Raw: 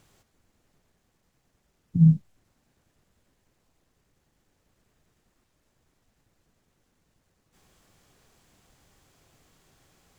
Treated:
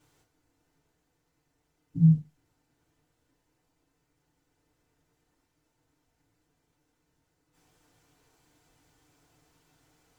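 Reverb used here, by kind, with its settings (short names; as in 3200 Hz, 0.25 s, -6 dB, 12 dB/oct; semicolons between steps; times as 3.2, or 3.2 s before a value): FDN reverb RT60 0.3 s, low-frequency decay 0.8×, high-frequency decay 0.75×, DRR -8.5 dB; gain -12.5 dB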